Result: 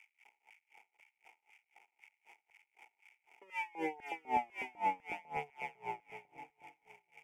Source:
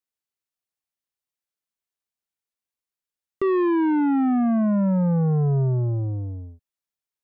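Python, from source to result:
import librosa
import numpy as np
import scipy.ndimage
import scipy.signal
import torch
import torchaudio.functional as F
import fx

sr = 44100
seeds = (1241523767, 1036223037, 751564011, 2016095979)

p1 = fx.cycle_switch(x, sr, every=2, mode='muted')
p2 = p1 + 0.99 * np.pad(p1, (int(6.9 * sr / 1000.0), 0))[:len(p1)]
p3 = fx.rider(p2, sr, range_db=10, speed_s=0.5)
p4 = p2 + (p3 * 10.0 ** (-3.0 / 20.0))
p5 = fx.dmg_crackle(p4, sr, seeds[0], per_s=390.0, level_db=-29.0)
p6 = fx.vowel_filter(p5, sr, vowel='u')
p7 = fx.filter_lfo_highpass(p6, sr, shape='square', hz=2.0, low_hz=530.0, high_hz=1800.0, q=1.2)
p8 = fx.fixed_phaser(p7, sr, hz=1100.0, stages=6)
p9 = p8 + fx.echo_alternate(p8, sr, ms=366, hz=890.0, feedback_pct=54, wet_db=-9.5, dry=0)
p10 = p9 * 10.0 ** (-28 * (0.5 - 0.5 * np.cos(2.0 * np.pi * 3.9 * np.arange(len(p9)) / sr)) / 20.0)
y = p10 * 10.0 ** (8.5 / 20.0)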